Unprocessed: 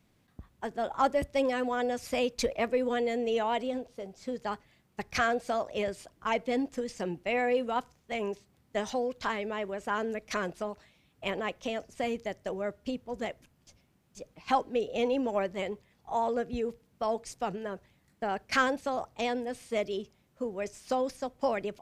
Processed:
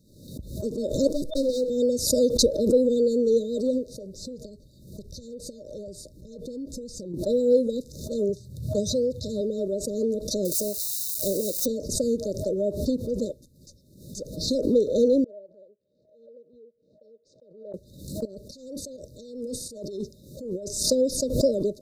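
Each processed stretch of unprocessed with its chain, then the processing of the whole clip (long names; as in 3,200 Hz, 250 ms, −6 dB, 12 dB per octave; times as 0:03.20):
0:01.07–0:01.70: lower of the sound and its delayed copy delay 6.2 ms + noise gate −47 dBFS, range −38 dB + parametric band 61 Hz −7.5 dB 2.8 octaves
0:03.94–0:07.14: downward compressor, threshold −43 dBFS + low-shelf EQ 130 Hz +9 dB
0:08.29–0:09.41: high-pass filter 82 Hz + low shelf with overshoot 170 Hz +13 dB, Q 1.5
0:10.45–0:11.66: spike at every zero crossing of −34 dBFS + bass and treble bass −2 dB, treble +8 dB
0:15.24–0:17.74: mu-law and A-law mismatch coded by A + resonant band-pass 910 Hz, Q 9.9 + high-frequency loss of the air 120 metres
0:18.25–0:20.83: compressor whose output falls as the input rises −42 dBFS + shaped tremolo saw up 1.4 Hz, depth 45%
whole clip: brick-wall band-stop 630–3,600 Hz; dynamic equaliser 330 Hz, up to +3 dB, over −43 dBFS, Q 1.2; background raised ahead of every attack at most 74 dB per second; level +7 dB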